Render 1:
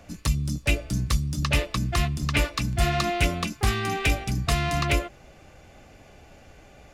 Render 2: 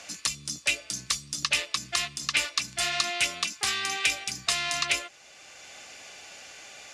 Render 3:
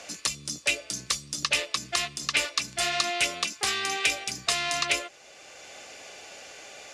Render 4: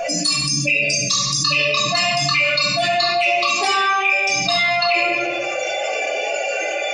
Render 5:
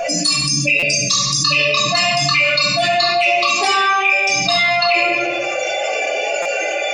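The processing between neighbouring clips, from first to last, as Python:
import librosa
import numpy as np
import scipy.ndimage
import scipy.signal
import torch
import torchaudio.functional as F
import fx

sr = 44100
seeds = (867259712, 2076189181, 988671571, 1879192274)

y1 = fx.weighting(x, sr, curve='ITU-R 468')
y1 = fx.band_squash(y1, sr, depth_pct=40)
y1 = y1 * librosa.db_to_amplitude(-5.5)
y2 = fx.peak_eq(y1, sr, hz=470.0, db=7.5, octaves=1.3)
y3 = fx.spec_expand(y2, sr, power=3.3)
y3 = fx.room_shoebox(y3, sr, seeds[0], volume_m3=490.0, walls='mixed', distance_m=3.0)
y3 = fx.env_flatten(y3, sr, amount_pct=70)
y4 = fx.buffer_glitch(y3, sr, at_s=(0.79, 6.42), block=256, repeats=5)
y4 = y4 * librosa.db_to_amplitude(2.5)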